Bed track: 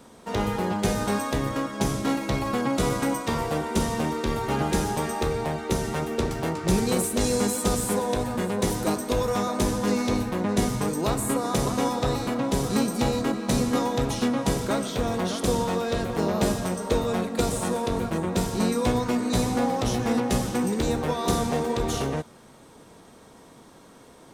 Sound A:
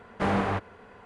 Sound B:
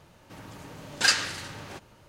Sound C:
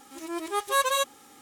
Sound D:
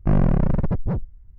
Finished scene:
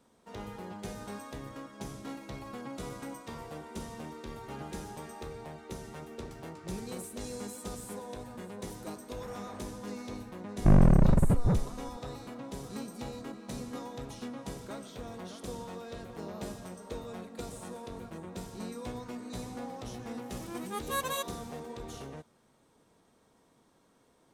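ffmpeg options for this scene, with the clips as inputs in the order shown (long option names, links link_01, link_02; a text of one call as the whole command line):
ffmpeg -i bed.wav -i cue0.wav -i cue1.wav -i cue2.wav -i cue3.wav -filter_complex "[0:a]volume=-16.5dB[link_01];[1:a]acompressor=threshold=-29dB:ratio=6:attack=3.2:release=140:knee=1:detection=peak[link_02];[3:a]equalizer=frequency=13000:width=2:gain=6[link_03];[link_02]atrim=end=1.05,asetpts=PTS-STARTPTS,volume=-16dB,afade=type=in:duration=0.004:curve=hsin,afade=type=out:start_time=1.046:duration=0.004:curve=hsin,adelay=9020[link_04];[4:a]atrim=end=1.38,asetpts=PTS-STARTPTS,volume=-2dB,afade=type=in:duration=0.004:curve=hsin,afade=type=out:start_time=1.376:duration=0.004:curve=hsin,adelay=10590[link_05];[link_03]atrim=end=1.41,asetpts=PTS-STARTPTS,volume=-9.5dB,afade=type=in:duration=0.004:curve=hsin,afade=type=out:start_time=1.406:duration=0.004:curve=hsin,adelay=20190[link_06];[link_01][link_04][link_05][link_06]amix=inputs=4:normalize=0" out.wav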